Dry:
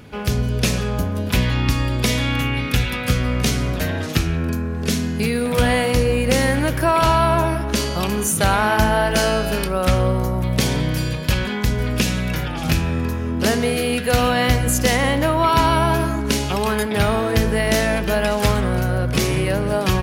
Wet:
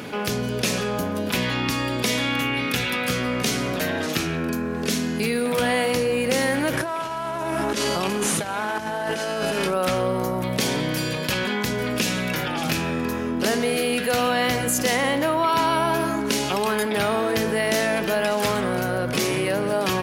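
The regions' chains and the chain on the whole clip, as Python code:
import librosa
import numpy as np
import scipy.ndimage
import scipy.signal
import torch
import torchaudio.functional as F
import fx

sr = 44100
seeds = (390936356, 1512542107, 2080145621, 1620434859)

y = fx.chain(x, sr, fx.cvsd(bps=64000),
    fx.notch(hz=4500.0, q=20.0),
    fx.over_compress(threshold_db=-23.0, ratio=-0.5), at=(6.73, 9.74))
y = scipy.signal.sosfilt(scipy.signal.butter(2, 220.0, 'highpass', fs=sr, output='sos'), y)
y = fx.env_flatten(y, sr, amount_pct=50)
y = y * 10.0 ** (-4.5 / 20.0)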